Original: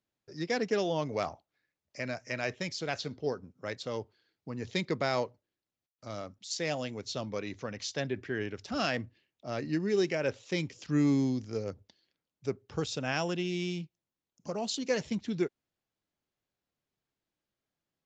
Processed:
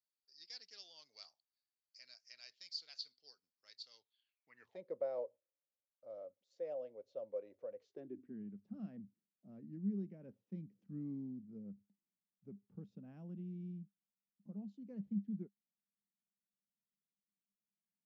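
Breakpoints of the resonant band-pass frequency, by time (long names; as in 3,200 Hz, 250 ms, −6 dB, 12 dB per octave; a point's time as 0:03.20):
resonant band-pass, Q 11
0:03.92 4,600 Hz
0:04.56 1,900 Hz
0:04.80 540 Hz
0:07.72 540 Hz
0:08.40 200 Hz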